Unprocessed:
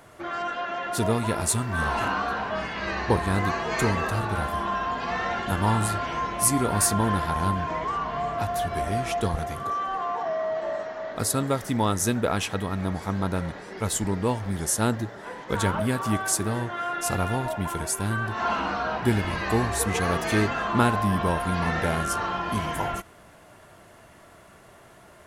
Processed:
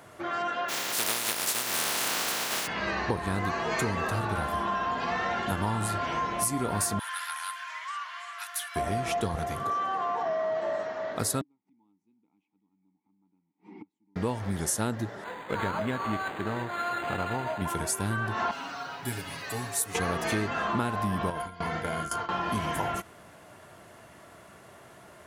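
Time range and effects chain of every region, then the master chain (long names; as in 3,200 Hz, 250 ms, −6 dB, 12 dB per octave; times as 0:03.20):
0:00.68–0:02.66: compressing power law on the bin magnitudes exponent 0.19 + high-pass filter 270 Hz 6 dB per octave
0:06.99–0:08.76: high-pass filter 1,400 Hz 24 dB per octave + parametric band 10,000 Hz +8 dB 0.67 octaves
0:11.41–0:14.16: parametric band 190 Hz +12.5 dB 0.86 octaves + gate with flip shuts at −23 dBFS, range −38 dB + formant filter u
0:15.24–0:17.62: variable-slope delta modulation 32 kbit/s + spectral tilt +2 dB per octave + linearly interpolated sample-rate reduction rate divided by 8×
0:18.51–0:19.95: first-order pre-emphasis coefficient 0.8 + comb filter 7.2 ms, depth 88% + noise that follows the level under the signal 31 dB
0:21.30–0:22.29: noise gate with hold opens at −15 dBFS, closes at −20 dBFS + EQ curve with evenly spaced ripples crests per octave 1.8, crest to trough 9 dB + downward compressor 5 to 1, threshold −27 dBFS
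whole clip: high-pass filter 78 Hz; downward compressor, threshold −25 dBFS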